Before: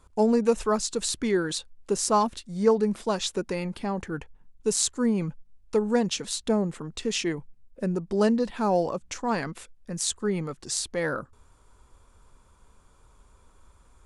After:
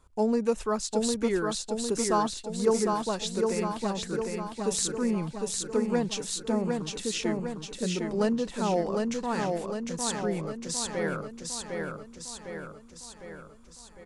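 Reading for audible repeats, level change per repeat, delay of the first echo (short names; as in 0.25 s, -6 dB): 7, -5.0 dB, 0.755 s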